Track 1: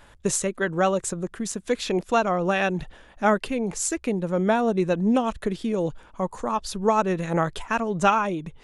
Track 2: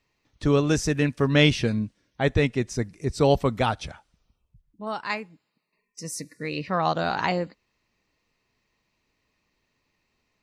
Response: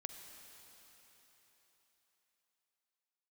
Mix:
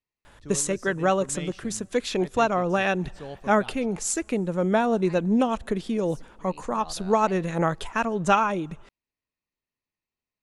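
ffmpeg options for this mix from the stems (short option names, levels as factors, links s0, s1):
-filter_complex "[0:a]adelay=250,volume=0.891,asplit=2[s0][s1];[s1]volume=0.0891[s2];[1:a]volume=0.106[s3];[2:a]atrim=start_sample=2205[s4];[s2][s4]afir=irnorm=-1:irlink=0[s5];[s0][s3][s5]amix=inputs=3:normalize=0"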